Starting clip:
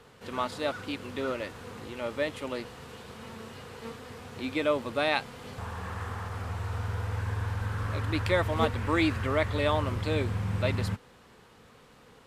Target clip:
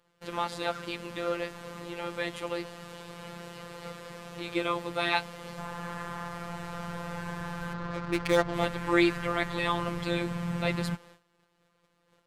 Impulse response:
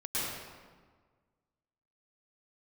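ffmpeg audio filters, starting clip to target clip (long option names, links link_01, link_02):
-filter_complex "[0:a]asettb=1/sr,asplit=3[link_01][link_02][link_03];[link_01]atrim=end=7.734[link_04];[link_02]atrim=start=7.73:end=8.54,asetpts=PTS-STARTPTS,afade=type=in:duration=0.004:curve=qsin,afade=type=out:start_time=0.806:duration=0.004:curve=qsin,adynamicsmooth=sensitivity=6:basefreq=560[link_05];[link_03]atrim=start=8.536[link_06];[link_04][link_05]acrossfade=duration=0.004:curve1=hsin:curve2=qsin[link_07];[link_07][link_06]acrossfade=duration=0.004:curve1=qsin:curve2=hsin,afftfilt=real='hypot(re,im)*cos(PI*b)':imag='0':win_size=1024:overlap=0.75,agate=range=-17dB:threshold=-55dB:ratio=16:detection=peak,volume=4.5dB"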